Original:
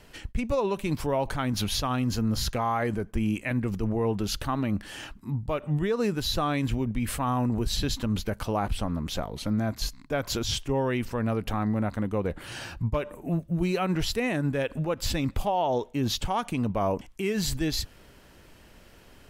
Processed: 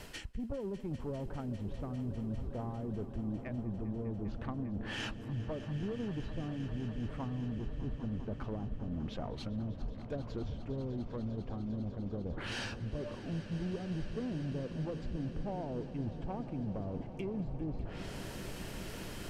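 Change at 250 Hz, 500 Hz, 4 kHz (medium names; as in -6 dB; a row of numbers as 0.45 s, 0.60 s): -9.5 dB, -12.5 dB, -16.0 dB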